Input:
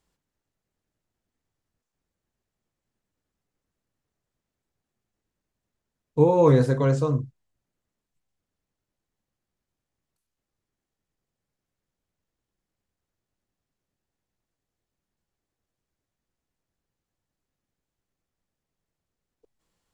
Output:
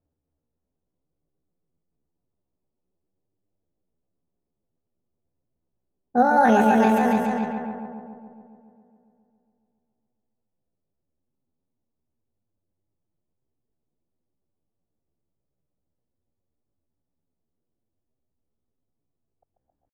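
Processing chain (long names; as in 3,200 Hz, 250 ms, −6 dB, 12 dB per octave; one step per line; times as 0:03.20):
echo machine with several playback heads 138 ms, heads first and second, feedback 60%, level −6.5 dB
pitch shifter +8.5 semitones
low-pass that shuts in the quiet parts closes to 600 Hz, open at −17 dBFS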